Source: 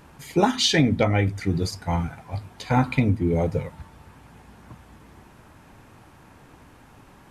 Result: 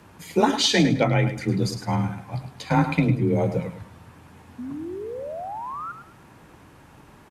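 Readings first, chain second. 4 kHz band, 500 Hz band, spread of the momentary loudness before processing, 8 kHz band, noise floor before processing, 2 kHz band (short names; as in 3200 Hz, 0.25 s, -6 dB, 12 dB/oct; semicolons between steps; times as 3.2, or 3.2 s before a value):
+0.5 dB, +1.5 dB, 14 LU, +0.5 dB, -51 dBFS, +0.5 dB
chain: painted sound rise, 4.58–5.92, 210–1400 Hz -33 dBFS; feedback echo 0.105 s, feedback 27%, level -10 dB; frequency shift +26 Hz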